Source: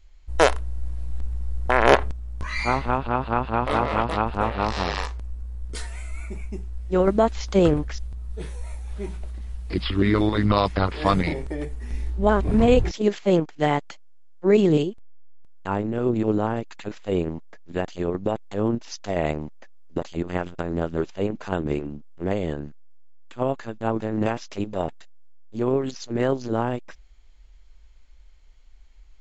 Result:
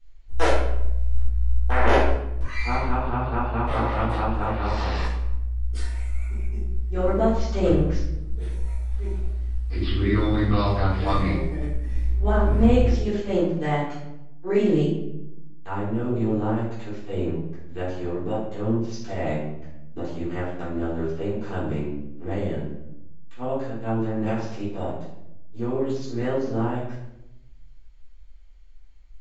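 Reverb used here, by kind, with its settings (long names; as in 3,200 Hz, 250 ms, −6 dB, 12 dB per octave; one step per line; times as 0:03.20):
rectangular room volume 240 cubic metres, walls mixed, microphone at 3.7 metres
level −15 dB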